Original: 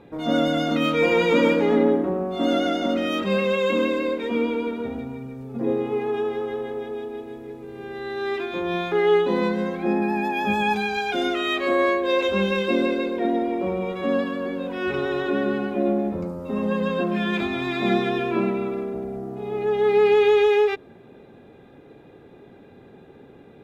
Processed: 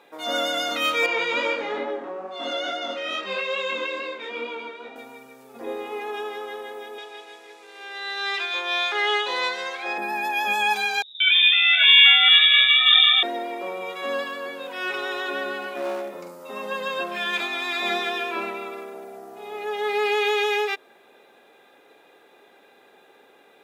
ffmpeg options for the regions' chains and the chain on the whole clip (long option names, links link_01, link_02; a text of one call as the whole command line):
ffmpeg -i in.wav -filter_complex "[0:a]asettb=1/sr,asplit=3[link_01][link_02][link_03];[link_01]atrim=end=1.064[link_04];[link_02]atrim=start=1.06:end=4.96,asetpts=PTS-STARTPTS,afade=type=in:duration=0.004:curve=qsin,afade=type=out:start_time=3.896:duration=0.004:curve=qsin,lowpass=4800,flanger=delay=19.5:depth=4.1:speed=2.3[link_05];[link_03]atrim=start=4.956[link_06];[link_04][link_05]acrossfade=duration=0.004:curve1=hsin:curve2=qsin[link_07];[link_07][link_06]acrossfade=duration=0.004:curve1=qsin:curve2=hsin,asettb=1/sr,asplit=3[link_08][link_09][link_10];[link_08]atrim=end=6.984[link_11];[link_09]atrim=start=6.98:end=9.98,asetpts=PTS-STARTPTS,afade=type=in:duration=0.004:curve=qsin,afade=type=out:start_time=2.996:duration=0.004:curve=qsin,highpass=450,lowpass=5300,highshelf=frequency=2700:gain=11[link_12];[link_10]atrim=start=9.976[link_13];[link_11][link_12]acrossfade=duration=0.004:curve1=hsin:curve2=qsin[link_14];[link_14][link_13]acrossfade=duration=0.004:curve1=qsin:curve2=hsin,asettb=1/sr,asplit=3[link_15][link_16][link_17];[link_15]atrim=end=11.024[link_18];[link_16]atrim=start=11.02:end=13.23,asetpts=PTS-STARTPTS,afade=type=in:duration=0.004:curve=qsin,afade=type=out:start_time=2.206:duration=0.004:curve=qsin,equalizer=frequency=1600:width_type=o:width=0.89:gain=13.5,acrossover=split=180|2100[link_19][link_20][link_21];[link_20]adelay=180[link_22];[link_21]adelay=710[link_23];[link_19][link_22][link_23]amix=inputs=3:normalize=0,atrim=end_sample=97461,lowpass=frequency=3300:width_type=q:width=0.5098,lowpass=frequency=3300:width_type=q:width=0.6013,lowpass=frequency=3300:width_type=q:width=0.9,lowpass=frequency=3300:width_type=q:width=2.563,afreqshift=-3900[link_24];[link_17]atrim=start=13.226[link_25];[link_18][link_24]acrossfade=duration=0.004:curve1=hsin:curve2=qsin[link_26];[link_26][link_25]acrossfade=duration=0.004:curve1=qsin:curve2=hsin,asettb=1/sr,asplit=3[link_27][link_28][link_29];[link_27]atrim=end=15.624[link_30];[link_28]atrim=start=15.62:end=16.43,asetpts=PTS-STARTPTS,afade=type=in:duration=0.004:curve=qsin,afade=type=out:start_time=0.806:duration=0.004:curve=qsin,asplit=2[link_31][link_32];[link_32]adelay=45,volume=-7dB[link_33];[link_31][link_33]amix=inputs=2:normalize=0,atrim=end_sample=35721,aeval=exprs='clip(val(0),-1,0.1)':channel_layout=same[link_34];[link_29]atrim=start=16.426[link_35];[link_30][link_34]acrossfade=duration=0.004:curve1=hsin:curve2=qsin[link_36];[link_36][link_35]acrossfade=duration=0.004:curve1=qsin:curve2=hsin,highpass=710,highshelf=frequency=4500:gain=10.5,volume=1.5dB" out.wav